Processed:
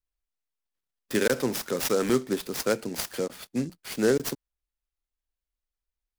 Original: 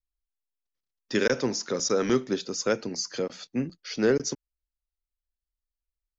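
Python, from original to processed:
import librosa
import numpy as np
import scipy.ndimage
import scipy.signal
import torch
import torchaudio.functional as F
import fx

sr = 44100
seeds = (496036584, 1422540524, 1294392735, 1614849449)

y = fx.noise_mod_delay(x, sr, seeds[0], noise_hz=5700.0, depth_ms=0.04)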